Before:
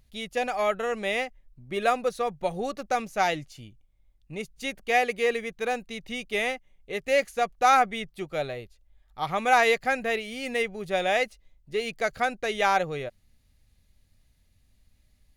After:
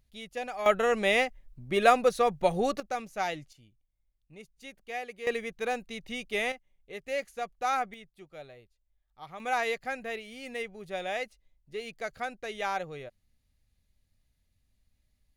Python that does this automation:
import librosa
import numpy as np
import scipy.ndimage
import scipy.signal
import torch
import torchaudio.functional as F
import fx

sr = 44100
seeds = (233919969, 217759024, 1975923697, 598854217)

y = fx.gain(x, sr, db=fx.steps((0.0, -8.0), (0.66, 3.0), (2.8, -7.0), (3.53, -14.0), (5.27, -3.0), (6.52, -9.5), (7.94, -16.0), (9.4, -9.0)))